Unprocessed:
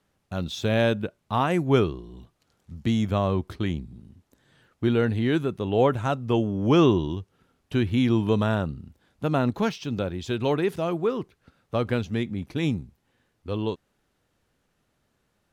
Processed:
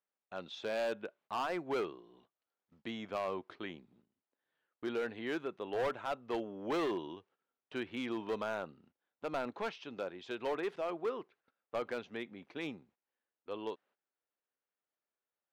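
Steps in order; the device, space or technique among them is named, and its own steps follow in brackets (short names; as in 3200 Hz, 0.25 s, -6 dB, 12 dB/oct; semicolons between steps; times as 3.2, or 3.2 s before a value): walkie-talkie (BPF 460–3000 Hz; hard clip -23 dBFS, distortion -10 dB; gate -59 dBFS, range -14 dB); gain -7 dB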